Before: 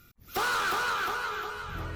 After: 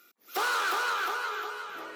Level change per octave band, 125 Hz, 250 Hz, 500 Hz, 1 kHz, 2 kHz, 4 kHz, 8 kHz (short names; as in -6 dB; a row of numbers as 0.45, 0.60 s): under -30 dB, -4.0 dB, -0.5 dB, 0.0 dB, 0.0 dB, 0.0 dB, 0.0 dB